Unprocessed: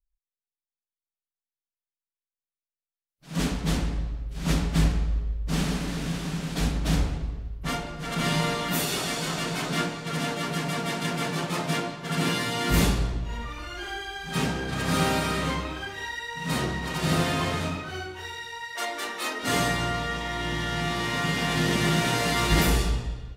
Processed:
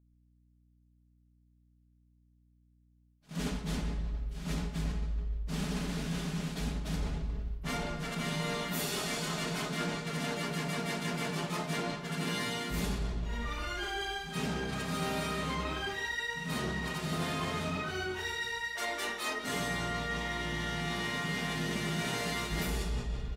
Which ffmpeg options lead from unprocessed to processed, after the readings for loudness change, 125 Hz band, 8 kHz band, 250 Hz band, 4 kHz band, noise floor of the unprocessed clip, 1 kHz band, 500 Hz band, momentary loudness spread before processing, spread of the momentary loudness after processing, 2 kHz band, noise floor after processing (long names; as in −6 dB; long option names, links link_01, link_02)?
−7.5 dB, −8.5 dB, −8.0 dB, −7.5 dB, −7.0 dB, below −85 dBFS, −8.0 dB, −7.0 dB, 10 LU, 4 LU, −6.0 dB, −67 dBFS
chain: -af "aecho=1:1:4.8:0.39,aeval=exprs='val(0)+0.00126*(sin(2*PI*60*n/s)+sin(2*PI*2*60*n/s)/2+sin(2*PI*3*60*n/s)/3+sin(2*PI*4*60*n/s)/4+sin(2*PI*5*60*n/s)/5)':channel_layout=same,areverse,acompressor=threshold=-37dB:ratio=5,areverse,agate=range=-11dB:threshold=-54dB:ratio=16:detection=peak,volume=4dB"